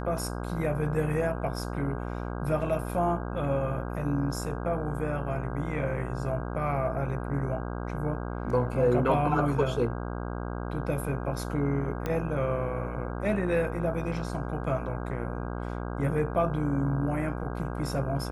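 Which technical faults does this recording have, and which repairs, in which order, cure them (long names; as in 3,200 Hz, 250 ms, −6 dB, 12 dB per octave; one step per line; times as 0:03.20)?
mains buzz 60 Hz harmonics 27 −34 dBFS
0:12.06: click −18 dBFS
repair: click removal
hum removal 60 Hz, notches 27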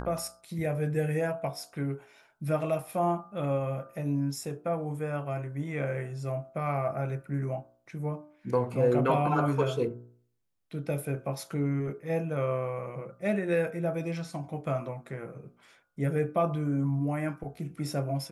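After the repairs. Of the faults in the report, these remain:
none of them is left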